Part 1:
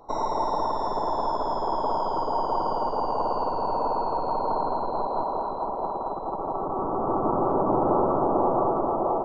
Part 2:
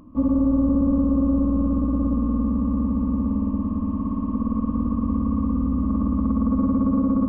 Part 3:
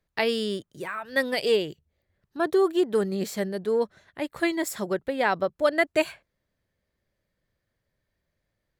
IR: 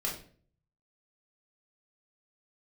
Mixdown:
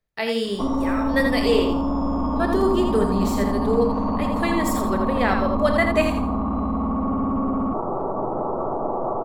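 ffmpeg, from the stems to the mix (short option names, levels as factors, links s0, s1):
-filter_complex "[0:a]acompressor=threshold=0.0562:ratio=6,adelay=500,volume=0.531,asplit=2[s0][s1];[s1]volume=0.531[s2];[1:a]equalizer=f=1900:w=0.48:g=14,adelay=450,volume=0.841[s3];[2:a]dynaudnorm=f=100:g=5:m=1.78,volume=0.447,asplit=3[s4][s5][s6];[s5]volume=0.473[s7];[s6]volume=0.708[s8];[s0][s3]amix=inputs=2:normalize=0,dynaudnorm=f=650:g=3:m=2.51,alimiter=limit=0.141:level=0:latency=1:release=33,volume=1[s9];[3:a]atrim=start_sample=2205[s10];[s2][s7]amix=inputs=2:normalize=0[s11];[s11][s10]afir=irnorm=-1:irlink=0[s12];[s8]aecho=0:1:83|166|249|332:1|0.29|0.0841|0.0244[s13];[s4][s9][s12][s13]amix=inputs=4:normalize=0"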